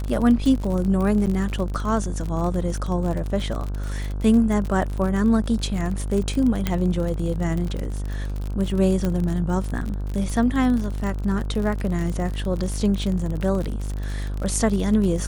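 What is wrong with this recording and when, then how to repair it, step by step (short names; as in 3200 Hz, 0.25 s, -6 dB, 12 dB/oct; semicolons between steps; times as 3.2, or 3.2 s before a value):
buzz 50 Hz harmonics 32 -27 dBFS
crackle 41/s -26 dBFS
1.26–1.27 gap 8.6 ms
6.67 pop -8 dBFS
9.05 pop -12 dBFS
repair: de-click; de-hum 50 Hz, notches 32; interpolate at 1.26, 8.6 ms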